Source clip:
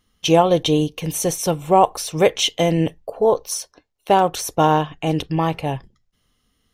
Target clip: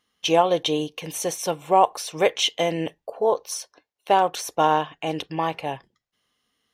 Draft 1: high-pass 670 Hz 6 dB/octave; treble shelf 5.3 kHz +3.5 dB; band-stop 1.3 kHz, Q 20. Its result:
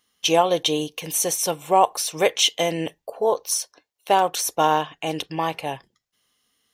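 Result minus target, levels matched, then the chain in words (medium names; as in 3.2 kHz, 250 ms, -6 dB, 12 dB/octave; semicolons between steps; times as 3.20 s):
8 kHz band +6.0 dB
high-pass 670 Hz 6 dB/octave; treble shelf 5.3 kHz -8 dB; band-stop 1.3 kHz, Q 20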